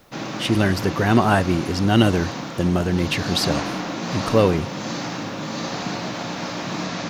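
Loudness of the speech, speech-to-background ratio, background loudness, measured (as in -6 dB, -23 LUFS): -21.0 LUFS, 7.5 dB, -28.5 LUFS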